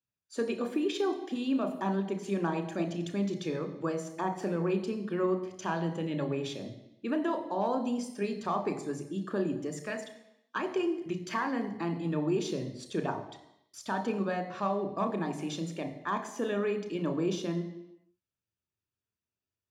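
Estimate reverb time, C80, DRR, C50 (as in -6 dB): 0.85 s, 12.5 dB, 6.5 dB, 10.5 dB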